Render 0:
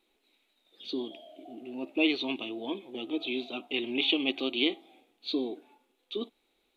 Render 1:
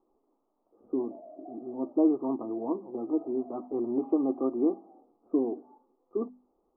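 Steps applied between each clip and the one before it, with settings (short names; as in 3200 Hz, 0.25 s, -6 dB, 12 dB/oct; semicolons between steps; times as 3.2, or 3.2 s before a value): Chebyshev low-pass 1200 Hz, order 6; notches 50/100/150/200/250 Hz; gain +4.5 dB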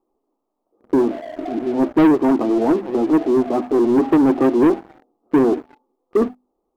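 sample leveller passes 3; gain +6 dB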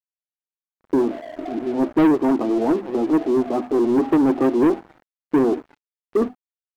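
crossover distortion -51 dBFS; gain -2.5 dB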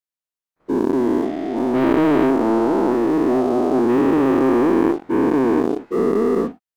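spectral dilation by 0.48 s; gain -4.5 dB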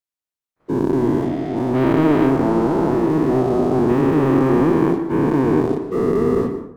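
octaver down 1 oct, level -5 dB; plate-style reverb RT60 0.68 s, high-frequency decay 0.55×, pre-delay 0.105 s, DRR 9 dB; gain -1 dB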